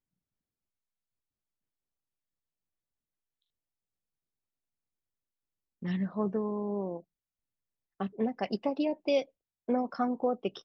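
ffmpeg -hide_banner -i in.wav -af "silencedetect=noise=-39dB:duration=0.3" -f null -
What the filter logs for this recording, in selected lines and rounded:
silence_start: 0.00
silence_end: 5.83 | silence_duration: 5.83
silence_start: 7.00
silence_end: 8.00 | silence_duration: 1.00
silence_start: 9.23
silence_end: 9.69 | silence_duration: 0.45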